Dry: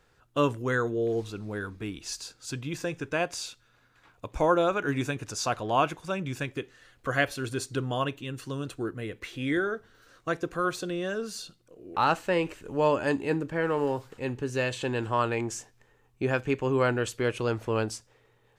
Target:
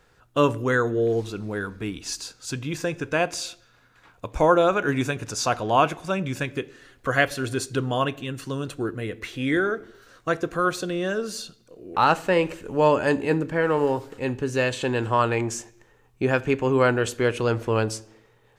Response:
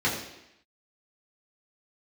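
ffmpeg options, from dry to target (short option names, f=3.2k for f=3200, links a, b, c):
-filter_complex "[0:a]asplit=2[a][b];[1:a]atrim=start_sample=2205,afade=t=out:st=0.45:d=0.01,atrim=end_sample=20286[c];[b][c]afir=irnorm=-1:irlink=0,volume=-29dB[d];[a][d]amix=inputs=2:normalize=0,volume=5dB"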